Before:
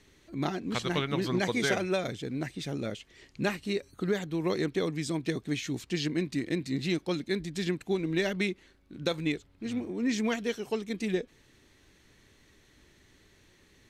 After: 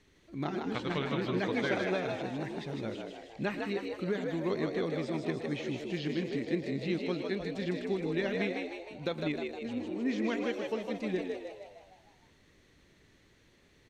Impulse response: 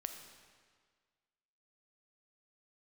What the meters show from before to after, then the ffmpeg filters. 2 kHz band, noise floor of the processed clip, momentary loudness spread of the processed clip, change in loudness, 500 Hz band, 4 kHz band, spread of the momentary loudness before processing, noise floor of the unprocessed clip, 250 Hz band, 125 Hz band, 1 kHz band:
-3.0 dB, -64 dBFS, 7 LU, -2.5 dB, -1.5 dB, -6.0 dB, 7 LU, -62 dBFS, -2.5 dB, -4.0 dB, -1.5 dB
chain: -filter_complex "[0:a]highshelf=f=6.5k:g=-7.5,asplit=2[a][b];[b]asplit=7[c][d][e][f][g][h][i];[c]adelay=155,afreqshift=76,volume=-4.5dB[j];[d]adelay=310,afreqshift=152,volume=-10.2dB[k];[e]adelay=465,afreqshift=228,volume=-15.9dB[l];[f]adelay=620,afreqshift=304,volume=-21.5dB[m];[g]adelay=775,afreqshift=380,volume=-27.2dB[n];[h]adelay=930,afreqshift=456,volume=-32.9dB[o];[i]adelay=1085,afreqshift=532,volume=-38.6dB[p];[j][k][l][m][n][o][p]amix=inputs=7:normalize=0[q];[a][q]amix=inputs=2:normalize=0,acrossover=split=4300[r][s];[s]acompressor=threshold=-56dB:ratio=4:attack=1:release=60[t];[r][t]amix=inputs=2:normalize=0,asplit=2[u][v];[v]aecho=0:1:114:0.188[w];[u][w]amix=inputs=2:normalize=0,volume=-4dB"

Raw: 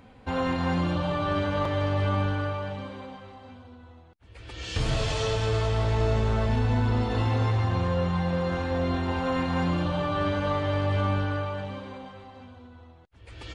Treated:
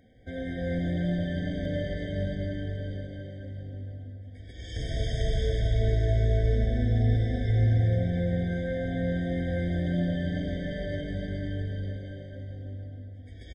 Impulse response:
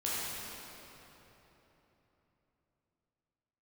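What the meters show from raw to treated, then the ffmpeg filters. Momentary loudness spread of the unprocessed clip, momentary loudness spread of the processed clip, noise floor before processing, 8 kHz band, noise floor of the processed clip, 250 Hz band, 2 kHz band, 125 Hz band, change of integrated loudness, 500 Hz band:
14 LU, 16 LU, -52 dBFS, n/a, -44 dBFS, -1.5 dB, -6.0 dB, 0.0 dB, -2.0 dB, -4.0 dB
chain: -filter_complex "[0:a]asplit=2[a][b];[b]adelay=285.7,volume=-9dB,highshelf=f=4k:g=-6.43[c];[a][c]amix=inputs=2:normalize=0,asplit=2[d][e];[1:a]atrim=start_sample=2205,lowshelf=f=120:g=11.5,adelay=106[f];[e][f]afir=irnorm=-1:irlink=0,volume=-7dB[g];[d][g]amix=inputs=2:normalize=0,afftfilt=real='re*eq(mod(floor(b*sr/1024/770),2),0)':imag='im*eq(mod(floor(b*sr/1024/770),2),0)':win_size=1024:overlap=0.75,volume=-7dB"

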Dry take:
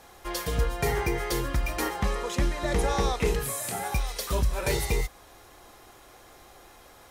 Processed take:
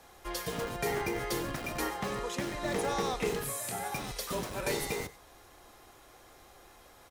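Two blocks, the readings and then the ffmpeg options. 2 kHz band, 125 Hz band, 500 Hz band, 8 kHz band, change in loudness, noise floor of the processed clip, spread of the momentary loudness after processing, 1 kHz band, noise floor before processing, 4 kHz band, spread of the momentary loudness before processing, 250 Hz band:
-4.0 dB, -11.5 dB, -4.0 dB, -4.0 dB, -5.5 dB, -57 dBFS, 5 LU, -4.0 dB, -52 dBFS, -4.0 dB, 4 LU, -4.0 dB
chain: -filter_complex "[0:a]acrossover=split=130[a][b];[a]aeval=exprs='(mod(42.2*val(0)+1,2)-1)/42.2':c=same[c];[b]aecho=1:1:96:0.158[d];[c][d]amix=inputs=2:normalize=0,volume=-4.5dB"

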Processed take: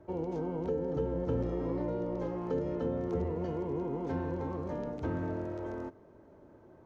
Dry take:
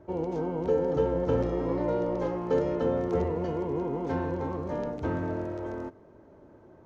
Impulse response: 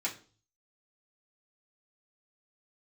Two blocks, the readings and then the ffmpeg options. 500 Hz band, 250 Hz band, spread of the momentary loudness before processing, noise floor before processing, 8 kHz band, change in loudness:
-6.5 dB, -4.0 dB, 7 LU, -54 dBFS, n/a, -5.5 dB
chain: -filter_complex "[0:a]acrossover=split=380[a][b];[b]acompressor=threshold=-35dB:ratio=6[c];[a][c]amix=inputs=2:normalize=0,volume=-3dB"

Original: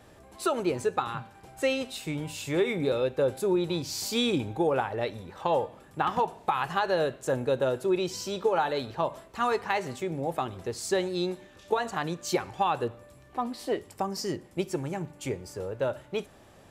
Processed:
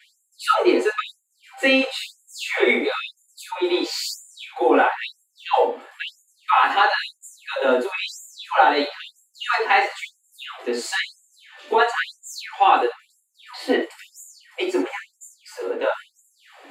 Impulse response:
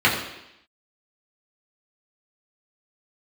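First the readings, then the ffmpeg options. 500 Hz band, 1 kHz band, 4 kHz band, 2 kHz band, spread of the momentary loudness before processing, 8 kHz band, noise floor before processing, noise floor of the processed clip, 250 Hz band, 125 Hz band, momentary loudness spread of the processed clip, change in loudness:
+4.0 dB, +9.5 dB, +8.5 dB, +13.0 dB, 9 LU, +2.5 dB, -54 dBFS, -68 dBFS, +4.0 dB, under -25 dB, 18 LU, +8.5 dB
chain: -filter_complex "[0:a]asubboost=boost=5:cutoff=160[a];[1:a]atrim=start_sample=2205,atrim=end_sample=4410[b];[a][b]afir=irnorm=-1:irlink=0,afftfilt=real='re*gte(b*sr/1024,220*pow(6800/220,0.5+0.5*sin(2*PI*1*pts/sr)))':imag='im*gte(b*sr/1024,220*pow(6800/220,0.5+0.5*sin(2*PI*1*pts/sr)))':win_size=1024:overlap=0.75,volume=-6.5dB"

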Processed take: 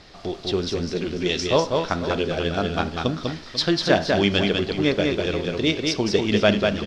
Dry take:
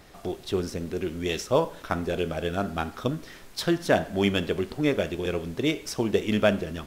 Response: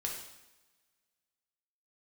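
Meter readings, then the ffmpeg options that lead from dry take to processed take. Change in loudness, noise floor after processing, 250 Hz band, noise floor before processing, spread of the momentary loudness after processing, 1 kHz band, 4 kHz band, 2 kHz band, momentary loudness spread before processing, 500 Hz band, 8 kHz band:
+5.0 dB, -41 dBFS, +4.5 dB, -48 dBFS, 7 LU, +4.5 dB, +9.5 dB, +6.0 dB, 8 LU, +4.5 dB, +4.0 dB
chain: -af "lowpass=f=4.7k:t=q:w=2.7,aecho=1:1:197|492:0.668|0.224,volume=2.5dB"

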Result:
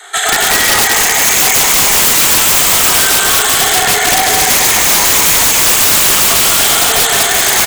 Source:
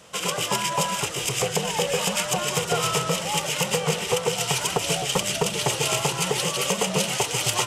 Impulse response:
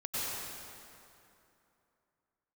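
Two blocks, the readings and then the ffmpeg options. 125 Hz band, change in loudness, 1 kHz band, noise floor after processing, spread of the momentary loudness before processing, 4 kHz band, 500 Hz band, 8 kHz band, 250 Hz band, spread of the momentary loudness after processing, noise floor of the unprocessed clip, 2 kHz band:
+2.5 dB, +16.5 dB, +12.5 dB, -13 dBFS, 2 LU, +14.0 dB, +6.0 dB, +17.5 dB, +7.0 dB, 2 LU, -32 dBFS, +17.0 dB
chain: -filter_complex "[0:a]afftfilt=real='re*pow(10,12/40*sin(2*PI*(0.63*log(max(b,1)*sr/1024/100)/log(2)-(0.29)*(pts-256)/sr)))':imag='im*pow(10,12/40*sin(2*PI*(0.63*log(max(b,1)*sr/1024/100)/log(2)-(0.29)*(pts-256)/sr)))':win_size=1024:overlap=0.75,superequalizer=6b=0.398:11b=3.16:14b=0.447:15b=3.98,acrossover=split=160|1800[a][b][c];[b]asoftclip=type=hard:threshold=-19.5dB[d];[c]flanger=delay=2.1:depth=5.4:regen=-27:speed=0.54:shape=sinusoidal[e];[a][d][e]amix=inputs=3:normalize=0,acrossover=split=8400[f][g];[g]acompressor=threshold=-32dB:ratio=4:attack=1:release=60[h];[f][h]amix=inputs=2:normalize=0,bandreject=f=60:t=h:w=6,bandreject=f=120:t=h:w=6,bandreject=f=180:t=h:w=6,afreqshift=260,lowshelf=f=370:g=-7.5,asplit=2[i][j];[j]adelay=38,volume=-7dB[k];[i][k]amix=inputs=2:normalize=0,asplit=2[l][m];[m]highpass=f=720:p=1,volume=15dB,asoftclip=type=tanh:threshold=-3.5dB[n];[l][n]amix=inputs=2:normalize=0,lowpass=f=7.9k:p=1,volume=-6dB,asplit=2[o][p];[p]aecho=0:1:180|306|394.2|455.9|499.2:0.631|0.398|0.251|0.158|0.1[q];[o][q]amix=inputs=2:normalize=0,aeval=exprs='(mod(2.82*val(0)+1,2)-1)/2.82':c=same,volume=5dB"

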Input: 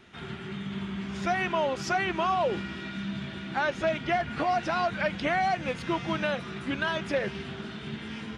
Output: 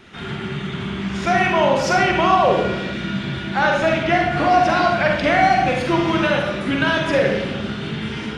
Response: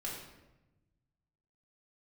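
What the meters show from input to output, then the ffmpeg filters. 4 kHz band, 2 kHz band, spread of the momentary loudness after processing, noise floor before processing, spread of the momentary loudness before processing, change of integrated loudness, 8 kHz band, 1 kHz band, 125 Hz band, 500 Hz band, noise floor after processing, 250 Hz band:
+10.5 dB, +11.0 dB, 11 LU, -41 dBFS, 11 LU, +11.5 dB, +10.5 dB, +11.5 dB, +12.0 dB, +11.5 dB, -29 dBFS, +11.0 dB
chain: -filter_complex "[0:a]asplit=2[a][b];[1:a]atrim=start_sample=2205,adelay=44[c];[b][c]afir=irnorm=-1:irlink=0,volume=-0.5dB[d];[a][d]amix=inputs=2:normalize=0,volume=8dB"

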